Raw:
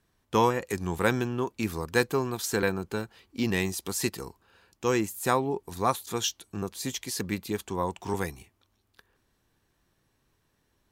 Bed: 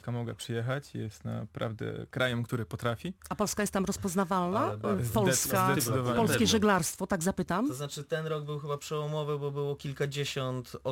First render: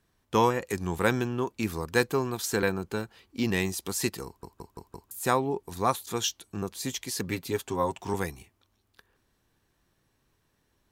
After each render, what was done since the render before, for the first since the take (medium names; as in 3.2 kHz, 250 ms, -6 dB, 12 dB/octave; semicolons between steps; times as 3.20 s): 4.26 s: stutter in place 0.17 s, 5 plays; 7.27–8.00 s: comb 7.5 ms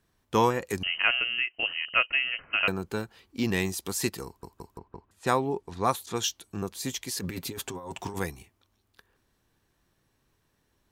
0.83–2.68 s: frequency inversion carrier 3 kHz; 4.78–6.23 s: level-controlled noise filter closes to 1.7 kHz, open at -25 dBFS; 7.14–8.19 s: compressor with a negative ratio -36 dBFS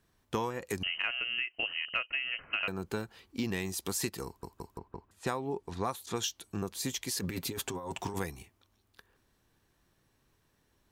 compression 6:1, threshold -30 dBFS, peak gain reduction 12 dB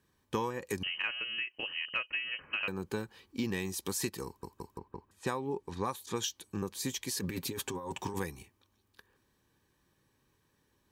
comb of notches 690 Hz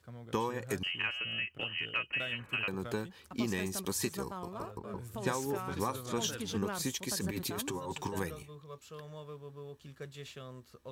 add bed -14 dB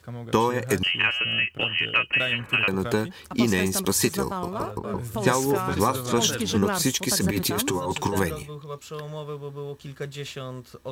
trim +12 dB